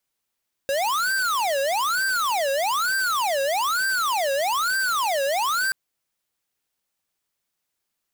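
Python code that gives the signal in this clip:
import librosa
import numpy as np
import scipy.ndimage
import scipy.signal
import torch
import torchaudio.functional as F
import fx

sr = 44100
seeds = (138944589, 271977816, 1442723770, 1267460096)

y = fx.siren(sr, length_s=5.03, kind='wail', low_hz=544.0, high_hz=1570.0, per_s=1.1, wave='square', level_db=-23.0)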